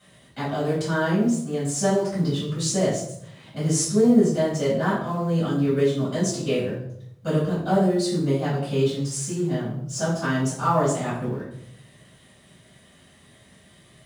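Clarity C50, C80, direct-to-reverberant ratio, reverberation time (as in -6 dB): 3.5 dB, 7.0 dB, -11.5 dB, 0.70 s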